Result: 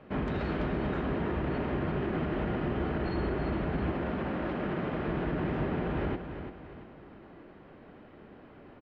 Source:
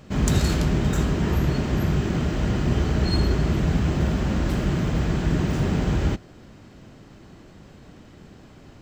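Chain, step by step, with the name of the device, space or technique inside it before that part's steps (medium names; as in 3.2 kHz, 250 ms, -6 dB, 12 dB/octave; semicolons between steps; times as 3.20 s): DJ mixer with the lows and highs turned down (three-band isolator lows -12 dB, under 260 Hz, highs -15 dB, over 3.4 kHz; peak limiter -22.5 dBFS, peak gain reduction 6 dB); 3.92–5.08 s: high-pass 130 Hz 6 dB/octave; distance through air 340 m; feedback delay 340 ms, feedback 41%, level -9 dB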